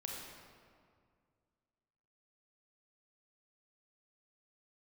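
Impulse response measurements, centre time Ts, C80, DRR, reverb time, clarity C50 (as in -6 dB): 98 ms, 1.5 dB, -2.0 dB, 2.1 s, -0.5 dB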